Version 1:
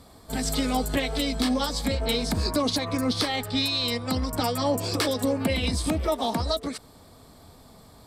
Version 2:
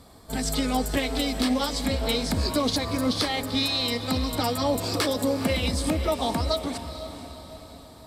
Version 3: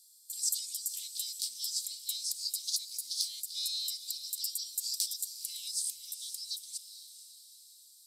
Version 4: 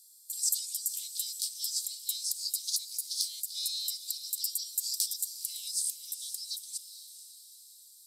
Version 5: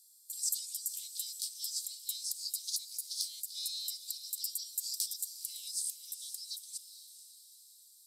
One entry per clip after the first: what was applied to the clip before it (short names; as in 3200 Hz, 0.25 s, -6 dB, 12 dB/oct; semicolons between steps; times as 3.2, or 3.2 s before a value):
diffused feedback echo 0.462 s, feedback 50%, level -11 dB
inverse Chebyshev high-pass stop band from 1600 Hz, stop band 60 dB; gain +2 dB
high shelf 5700 Hz +7.5 dB; gain -2.5 dB
HPF 640 Hz 12 dB/oct; gain -4.5 dB